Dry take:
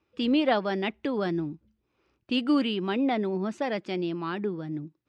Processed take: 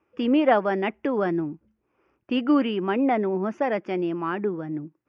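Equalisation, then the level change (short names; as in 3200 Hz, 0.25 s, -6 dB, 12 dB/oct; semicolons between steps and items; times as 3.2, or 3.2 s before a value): running mean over 11 samples; low shelf 200 Hz -11 dB; +7.0 dB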